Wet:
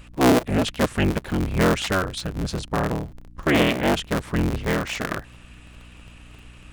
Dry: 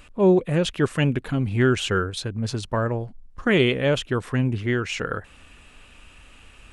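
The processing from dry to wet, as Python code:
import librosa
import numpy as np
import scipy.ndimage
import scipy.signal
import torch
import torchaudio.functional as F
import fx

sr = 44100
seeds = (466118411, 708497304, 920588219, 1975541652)

y = fx.cycle_switch(x, sr, every=3, mode='inverted')
y = fx.add_hum(y, sr, base_hz=60, snr_db=23)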